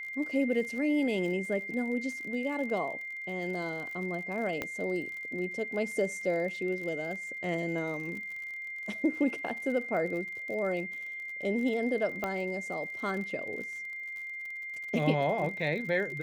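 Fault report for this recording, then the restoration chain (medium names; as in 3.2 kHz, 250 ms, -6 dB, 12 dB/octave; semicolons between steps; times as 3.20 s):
crackle 48 per s -39 dBFS
whine 2.1 kHz -37 dBFS
4.62 s: pop -18 dBFS
12.24 s: pop -19 dBFS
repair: de-click; band-stop 2.1 kHz, Q 30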